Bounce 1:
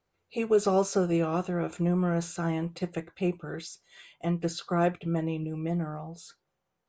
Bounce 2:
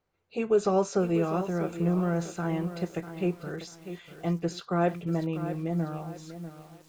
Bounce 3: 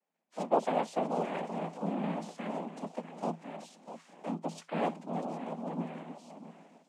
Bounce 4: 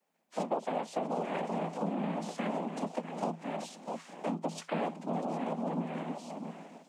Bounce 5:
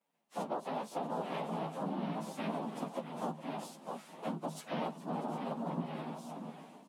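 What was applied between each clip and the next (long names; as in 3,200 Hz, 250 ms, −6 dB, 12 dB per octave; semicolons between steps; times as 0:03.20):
high-shelf EQ 4,000 Hz −6 dB; feedback echo at a low word length 645 ms, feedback 35%, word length 8 bits, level −11 dB
cochlear-implant simulation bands 4; Chebyshev high-pass with heavy ripple 160 Hz, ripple 6 dB; level −3.5 dB
downward compressor 6 to 1, threshold −38 dBFS, peak gain reduction 15.5 dB; level +7.5 dB
partials spread apart or drawn together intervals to 108%; single-tap delay 410 ms −16.5 dB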